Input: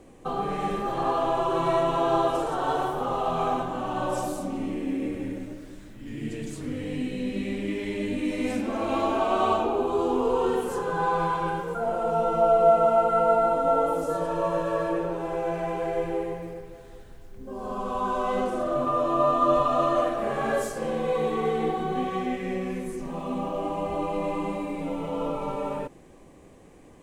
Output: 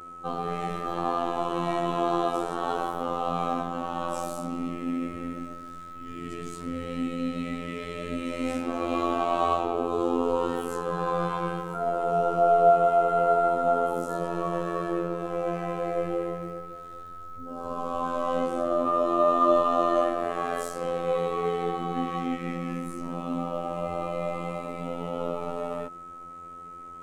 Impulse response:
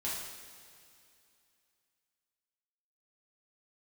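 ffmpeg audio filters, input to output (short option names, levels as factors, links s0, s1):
-af "aeval=exprs='val(0)+0.00891*sin(2*PI*1300*n/s)':c=same,afftfilt=real='hypot(re,im)*cos(PI*b)':imag='0':win_size=2048:overlap=0.75,volume=1.19"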